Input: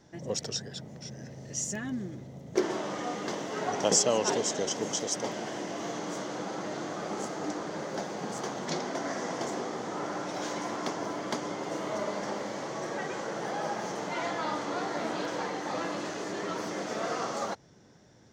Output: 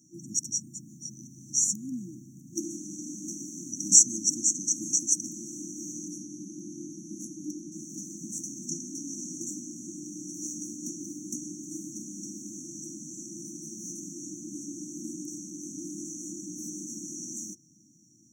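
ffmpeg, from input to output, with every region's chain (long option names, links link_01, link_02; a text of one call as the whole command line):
ffmpeg -i in.wav -filter_complex "[0:a]asettb=1/sr,asplit=3[link_01][link_02][link_03];[link_01]atrim=end=6.084[link_04];[link_02]atrim=start=6.08:end=7.72,asetpts=PTS-STARTPTS,afade=type=in:duration=0.004:curve=qsin,afade=type=out:start_time=1.636:duration=0.004:curve=qsin,lowpass=frequency=12000:width=0.5412,lowpass=frequency=12000:width=1.3066,asoftclip=type=hard:threshold=-26dB,equalizer=frequency=7900:width=2:gain=-11[link_05];[link_03]atrim=start=7.716[link_06];[link_04][link_05]acrossfade=duration=0.004:curve1=hsin:curve2=qsin[link_07];[link_07][link_06]acrossfade=duration=0.004:curve1=qsin:curve2=hsin,afftfilt=real='re*(1-between(b*sr/4096,350,5600))':imag='im*(1-between(b*sr/4096,350,5600))':win_size=4096:overlap=0.75,highpass=180,highshelf=frequency=2200:gain=10" out.wav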